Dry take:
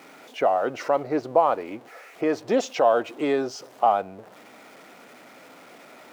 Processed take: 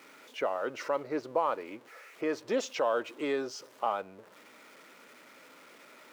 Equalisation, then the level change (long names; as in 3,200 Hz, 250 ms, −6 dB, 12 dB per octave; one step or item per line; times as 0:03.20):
low-shelf EQ 280 Hz −9 dB
parametric band 730 Hz −13 dB 0.26 octaves
−4.5 dB